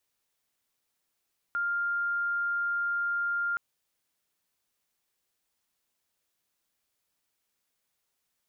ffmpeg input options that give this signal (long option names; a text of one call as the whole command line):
ffmpeg -f lavfi -i "sine=frequency=1400:duration=2.02:sample_rate=44100,volume=-8.44dB" out.wav